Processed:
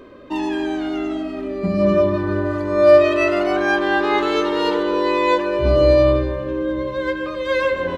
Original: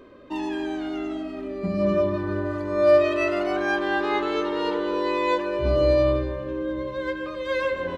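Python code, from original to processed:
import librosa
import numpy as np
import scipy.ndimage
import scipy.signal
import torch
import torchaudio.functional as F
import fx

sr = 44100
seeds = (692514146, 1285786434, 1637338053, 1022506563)

y = fx.high_shelf(x, sr, hz=4600.0, db=7.0, at=(4.18, 4.83))
y = F.gain(torch.from_numpy(y), 6.0).numpy()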